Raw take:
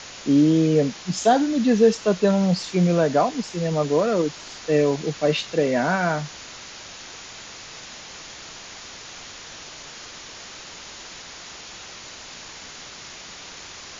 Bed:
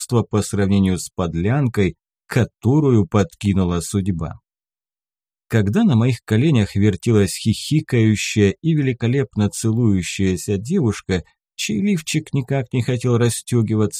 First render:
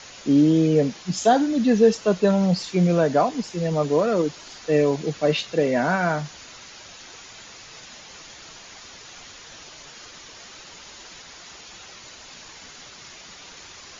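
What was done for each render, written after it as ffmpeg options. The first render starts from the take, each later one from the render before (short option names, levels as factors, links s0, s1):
-af "afftdn=nr=6:nf=-40"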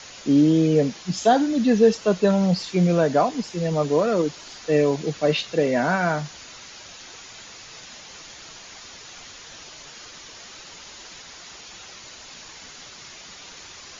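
-filter_complex "[0:a]acrossover=split=6100[s0][s1];[s1]acompressor=threshold=0.00251:ratio=4:attack=1:release=60[s2];[s0][s2]amix=inputs=2:normalize=0,highshelf=f=6600:g=6.5"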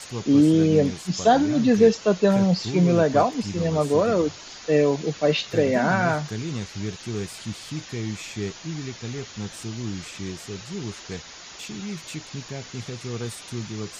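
-filter_complex "[1:a]volume=0.178[s0];[0:a][s0]amix=inputs=2:normalize=0"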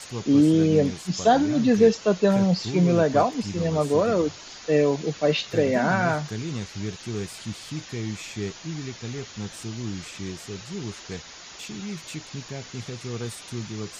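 -af "volume=0.891"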